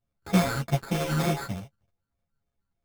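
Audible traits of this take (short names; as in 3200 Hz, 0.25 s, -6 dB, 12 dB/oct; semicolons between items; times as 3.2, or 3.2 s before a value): a buzz of ramps at a fixed pitch in blocks of 64 samples; phasing stages 12, 3.3 Hz, lowest notch 660–2100 Hz; aliases and images of a low sample rate 2900 Hz, jitter 0%; a shimmering, thickened sound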